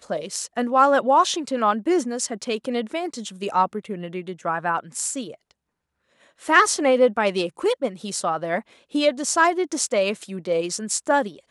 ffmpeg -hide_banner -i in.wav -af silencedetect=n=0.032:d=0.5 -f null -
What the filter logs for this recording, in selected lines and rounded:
silence_start: 5.31
silence_end: 6.46 | silence_duration: 1.14